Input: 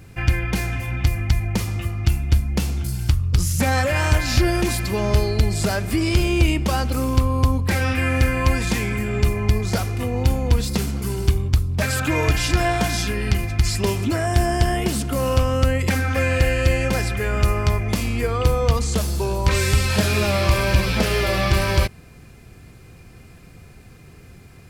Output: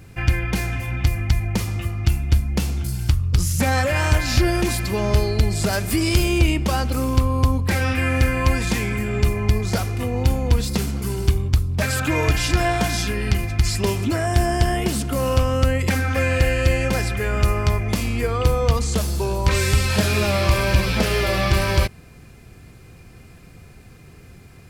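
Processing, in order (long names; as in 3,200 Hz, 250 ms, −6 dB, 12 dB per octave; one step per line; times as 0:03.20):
0:05.72–0:06.38: high-shelf EQ 4,100 Hz → 7,900 Hz +9 dB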